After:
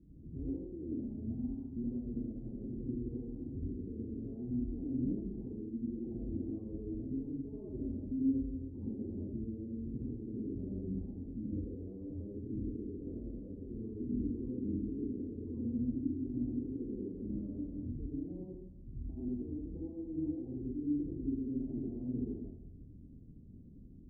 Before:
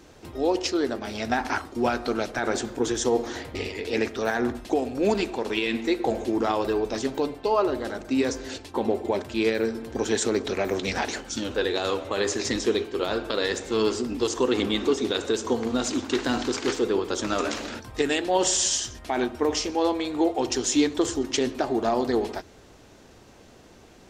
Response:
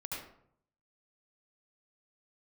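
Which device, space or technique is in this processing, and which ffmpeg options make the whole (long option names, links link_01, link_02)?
club heard from the street: -filter_complex "[0:a]alimiter=limit=-22dB:level=0:latency=1:release=132,lowpass=frequency=250:width=0.5412,lowpass=frequency=250:width=1.3066[link_01];[1:a]atrim=start_sample=2205[link_02];[link_01][link_02]afir=irnorm=-1:irlink=0,volume=1dB"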